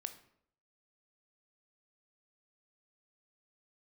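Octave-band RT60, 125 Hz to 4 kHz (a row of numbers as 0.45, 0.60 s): 0.75, 0.70, 0.70, 0.65, 0.55, 0.45 s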